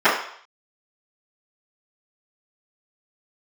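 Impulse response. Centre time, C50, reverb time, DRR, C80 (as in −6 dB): 39 ms, 4.5 dB, 0.60 s, −22.0 dB, 8.0 dB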